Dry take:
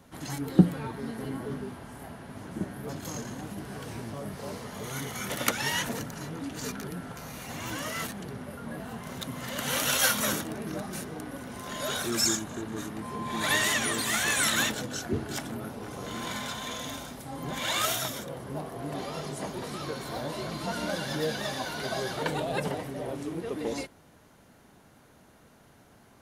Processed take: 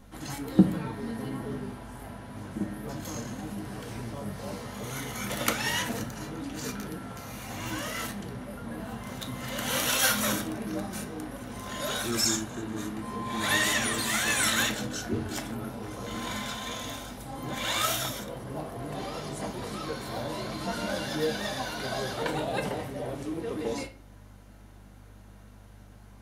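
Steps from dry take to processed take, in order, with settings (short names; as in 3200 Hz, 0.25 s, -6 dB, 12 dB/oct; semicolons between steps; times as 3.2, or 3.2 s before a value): hum 50 Hz, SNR 21 dB; on a send: reverb RT60 0.35 s, pre-delay 4 ms, DRR 5 dB; on the sum: gain -1 dB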